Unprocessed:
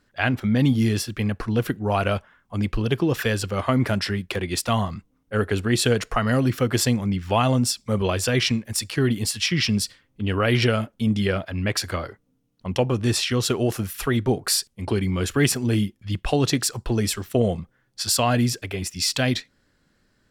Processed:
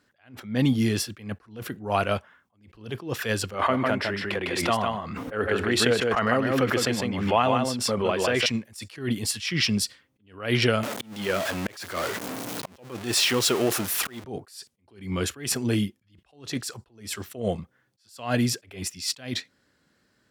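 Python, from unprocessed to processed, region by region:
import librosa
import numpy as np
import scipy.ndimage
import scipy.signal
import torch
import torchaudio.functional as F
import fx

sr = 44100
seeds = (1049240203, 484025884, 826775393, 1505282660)

y = fx.chain(x, sr, fx.bass_treble(bass_db=-8, treble_db=-12),
    fx.echo_single(ms=154, db=-4.0),
    fx.pre_swell(db_per_s=36.0), at=(3.54, 8.46))
y = fx.chain(y, sr, fx.zero_step(step_db=-23.5),
    fx.highpass(hz=250.0, slope=6),
    fx.auto_swell(attack_ms=399.0), at=(10.83, 14.24))
y = scipy.signal.sosfilt(scipy.signal.butter(4, 52.0, 'highpass', fs=sr, output='sos'), y)
y = fx.low_shelf(y, sr, hz=130.0, db=-8.5)
y = fx.attack_slew(y, sr, db_per_s=140.0)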